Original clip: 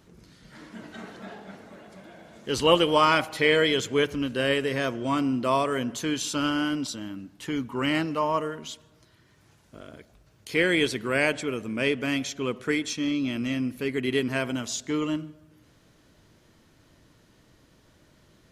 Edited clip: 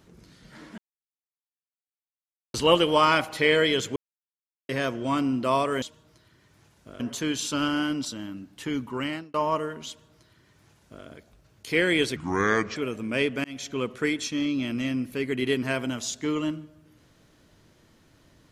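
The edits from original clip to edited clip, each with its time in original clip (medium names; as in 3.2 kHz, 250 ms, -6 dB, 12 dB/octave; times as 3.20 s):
0.78–2.54 s: mute
3.96–4.69 s: mute
7.68–8.16 s: fade out
8.69–9.87 s: copy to 5.82 s
10.98–11.42 s: speed 73%
12.10–12.35 s: fade in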